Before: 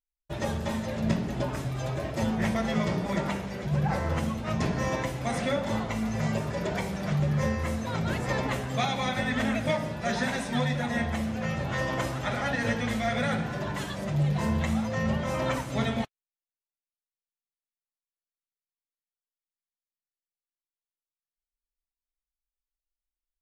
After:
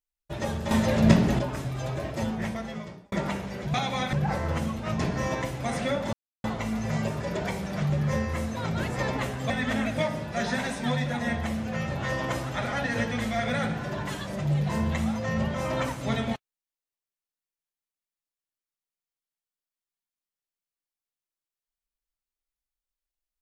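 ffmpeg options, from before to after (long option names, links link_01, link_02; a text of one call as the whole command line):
ffmpeg -i in.wav -filter_complex "[0:a]asplit=8[link_01][link_02][link_03][link_04][link_05][link_06][link_07][link_08];[link_01]atrim=end=0.712[link_09];[link_02]atrim=start=0.708:end=1.392,asetpts=PTS-STARTPTS,volume=8.5dB[link_10];[link_03]atrim=start=1.388:end=3.12,asetpts=PTS-STARTPTS,afade=type=out:start_time=0.682:duration=1.05[link_11];[link_04]atrim=start=3.12:end=3.742,asetpts=PTS-STARTPTS,afade=type=in:duration=0.004:curve=hsin[link_12];[link_05]atrim=start=8.798:end=9.192[link_13];[link_06]atrim=start=3.738:end=5.74,asetpts=PTS-STARTPTS,afade=type=out:start_time=1.998:duration=0.004:curve=hsin,apad=pad_dur=0.31[link_14];[link_07]atrim=start=5.74:end=8.802,asetpts=PTS-STARTPTS,afade=type=in:duration=0.004:curve=hsin[link_15];[link_08]atrim=start=9.188[link_16];[link_09][link_10]acrossfade=duration=0.004:curve1=hsin:curve2=hsin[link_17];[link_11][link_12]concat=n=2:v=0:a=1[link_18];[link_17][link_18]acrossfade=duration=0.004:curve1=hsin:curve2=hsin[link_19];[link_19][link_13]acrossfade=duration=0.004:curve1=hsin:curve2=hsin[link_20];[link_14][link_15]concat=n=2:v=0:a=1[link_21];[link_20][link_21]acrossfade=duration=0.004:curve1=hsin:curve2=hsin[link_22];[link_22][link_16]acrossfade=duration=0.004:curve1=hsin:curve2=hsin" out.wav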